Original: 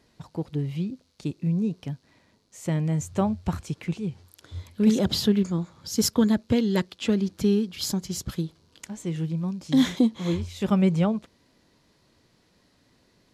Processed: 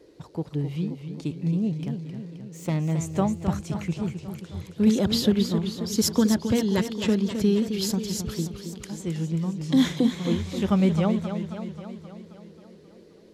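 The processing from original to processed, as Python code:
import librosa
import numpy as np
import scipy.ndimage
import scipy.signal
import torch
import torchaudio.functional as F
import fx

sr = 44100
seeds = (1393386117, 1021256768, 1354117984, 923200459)

y = fx.self_delay(x, sr, depth_ms=0.21, at=(1.55, 2.91))
y = fx.dmg_noise_band(y, sr, seeds[0], low_hz=290.0, high_hz=530.0, level_db=-55.0)
y = fx.echo_warbled(y, sr, ms=266, feedback_pct=62, rate_hz=2.8, cents=120, wet_db=-8.5)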